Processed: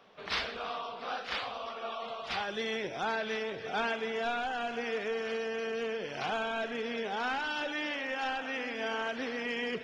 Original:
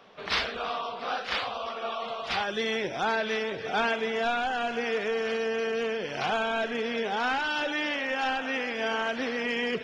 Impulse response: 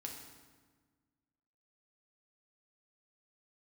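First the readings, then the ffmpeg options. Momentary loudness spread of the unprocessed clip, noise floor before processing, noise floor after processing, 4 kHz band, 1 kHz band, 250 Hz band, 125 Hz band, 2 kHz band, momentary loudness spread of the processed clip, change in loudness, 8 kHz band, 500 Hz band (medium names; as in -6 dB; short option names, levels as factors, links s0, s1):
5 LU, -38 dBFS, -43 dBFS, -5.5 dB, -5.5 dB, -5.5 dB, -5.5 dB, -5.5 dB, 5 LU, -5.5 dB, no reading, -5.5 dB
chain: -filter_complex "[0:a]asplit=2[s0][s1];[1:a]atrim=start_sample=2205,adelay=123[s2];[s1][s2]afir=irnorm=-1:irlink=0,volume=0.178[s3];[s0][s3]amix=inputs=2:normalize=0,volume=0.531"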